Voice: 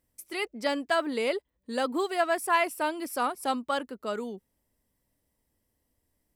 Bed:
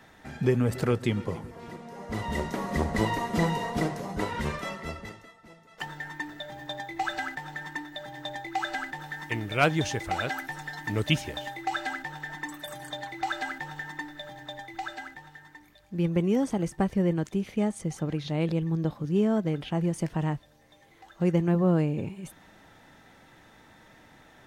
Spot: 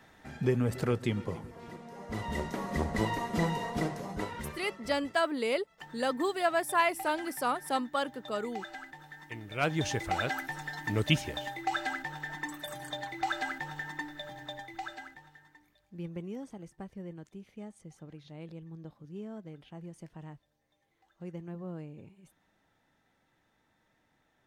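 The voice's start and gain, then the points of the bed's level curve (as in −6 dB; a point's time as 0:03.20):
4.25 s, −2.0 dB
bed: 0:04.13 −4 dB
0:04.56 −11.5 dB
0:09.43 −11.5 dB
0:09.91 −1.5 dB
0:14.46 −1.5 dB
0:16.65 −18 dB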